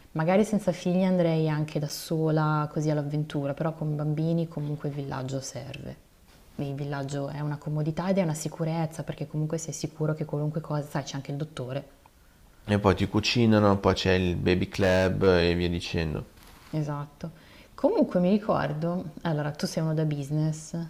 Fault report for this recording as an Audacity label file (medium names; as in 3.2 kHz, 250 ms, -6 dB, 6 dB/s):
1.890000	1.900000	dropout 7.7 ms
14.750000	15.280000	clipped -18 dBFS